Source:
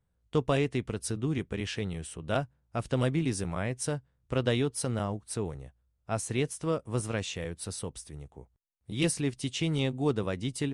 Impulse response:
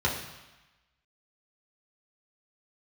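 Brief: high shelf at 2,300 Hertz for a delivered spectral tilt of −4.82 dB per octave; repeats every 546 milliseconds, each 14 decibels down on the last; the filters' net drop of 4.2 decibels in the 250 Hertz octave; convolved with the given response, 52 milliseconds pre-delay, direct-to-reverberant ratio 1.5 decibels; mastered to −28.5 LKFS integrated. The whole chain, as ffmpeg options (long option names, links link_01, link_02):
-filter_complex "[0:a]equalizer=frequency=250:width_type=o:gain=-6,highshelf=frequency=2300:gain=4,aecho=1:1:546|1092:0.2|0.0399,asplit=2[link_01][link_02];[1:a]atrim=start_sample=2205,adelay=52[link_03];[link_02][link_03]afir=irnorm=-1:irlink=0,volume=-12.5dB[link_04];[link_01][link_04]amix=inputs=2:normalize=0,volume=0.5dB"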